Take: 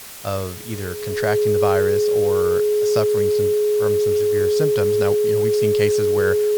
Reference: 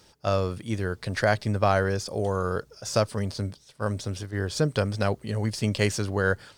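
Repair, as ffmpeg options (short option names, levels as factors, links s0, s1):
-af "adeclick=t=4,bandreject=f=420:w=30,afwtdn=0.014"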